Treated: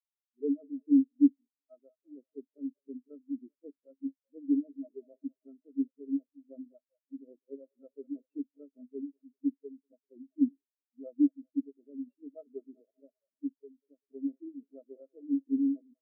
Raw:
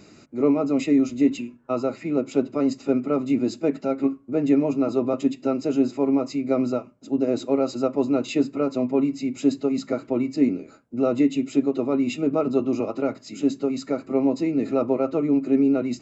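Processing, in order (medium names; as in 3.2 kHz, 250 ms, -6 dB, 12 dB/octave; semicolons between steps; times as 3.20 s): bass shelf 180 Hz -6.5 dB; feedback echo behind a band-pass 194 ms, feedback 70%, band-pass 970 Hz, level -6 dB; spectral contrast expander 4:1; trim -4 dB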